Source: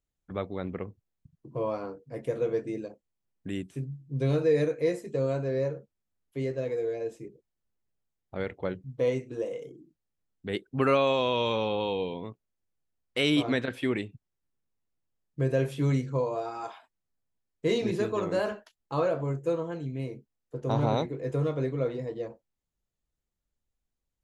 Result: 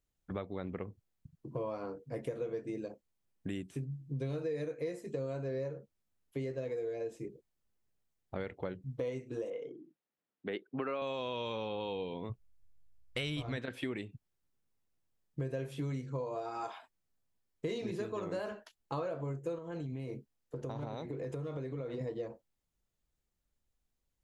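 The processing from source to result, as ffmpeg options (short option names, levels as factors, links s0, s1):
-filter_complex "[0:a]asettb=1/sr,asplit=3[s0][s1][s2];[s0]atrim=end=9.504[s3];[s1]atrim=start=9.5:end=11.02,asetpts=PTS-STARTPTS,afade=t=in:d=0.004:c=qsin,afade=t=out:st=1.516:d=0.004:c=qsin,highpass=250,lowpass=2900[s4];[s2]atrim=start=11.016[s5];[s3][s4]acrossfade=d=0.004:c1=hsin:c2=qsin[s6];[s6][s5]acrossfade=d=0.004:c1=qsin:c2=hsin,asplit=3[s7][s8][s9];[s7]afade=t=out:st=12.29:d=0.02[s10];[s8]asubboost=boost=11:cutoff=85,afade=t=in:st=12.29:d=0.02,afade=t=out:st=13.56:d=0.02[s11];[s9]afade=t=in:st=13.56:d=0.02[s12];[s10][s11][s12]amix=inputs=3:normalize=0,asettb=1/sr,asplit=3[s13][s14][s15];[s13]atrim=end=19.584[s16];[s14]atrim=start=19.58:end=22.01,asetpts=PTS-STARTPTS,afade=t=in:d=0.004:c=qsin,afade=t=out:st=2.426:d=0.004:c=qsin,acompressor=threshold=0.0178:ratio=10:attack=3.2:release=140:knee=1:detection=peak[s17];[s15]atrim=start=22.006[s18];[s16][s17]acrossfade=d=0.004:c1=hsin:c2=qsin[s19];[s19][s18]acrossfade=d=0.004:c1=qsin:c2=hsin,acompressor=threshold=0.0141:ratio=5,volume=1.19"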